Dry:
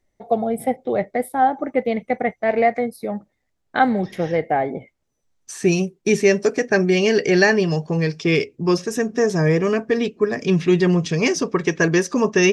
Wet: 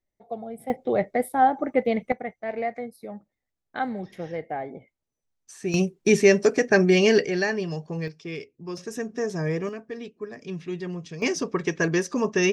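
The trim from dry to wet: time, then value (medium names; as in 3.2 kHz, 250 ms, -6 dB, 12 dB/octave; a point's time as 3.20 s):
-14 dB
from 0.70 s -2 dB
from 2.12 s -11.5 dB
from 5.74 s -1 dB
from 7.25 s -10 dB
from 8.08 s -16.5 dB
from 8.77 s -9.5 dB
from 9.69 s -16 dB
from 11.22 s -6 dB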